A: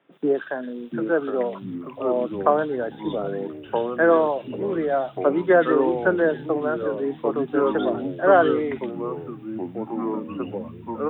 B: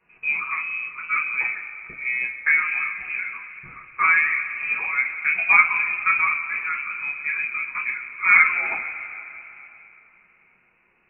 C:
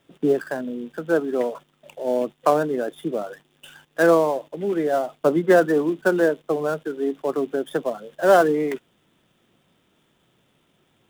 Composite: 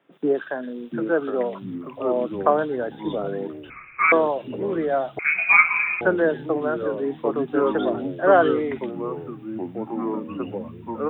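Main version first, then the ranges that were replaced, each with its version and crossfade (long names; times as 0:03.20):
A
0:03.70–0:04.12: punch in from B
0:05.19–0:06.01: punch in from B
not used: C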